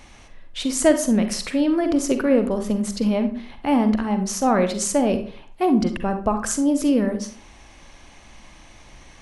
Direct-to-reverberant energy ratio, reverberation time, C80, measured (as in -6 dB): 7.5 dB, 0.45 s, 14.5 dB